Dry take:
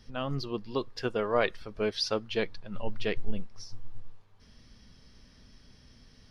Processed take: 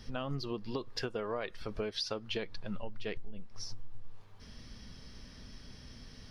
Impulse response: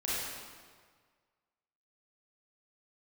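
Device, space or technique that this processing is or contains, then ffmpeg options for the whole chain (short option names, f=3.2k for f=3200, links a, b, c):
serial compression, peaks first: -af "acompressor=threshold=-34dB:ratio=6,acompressor=threshold=-40dB:ratio=2.5,volume=5.5dB"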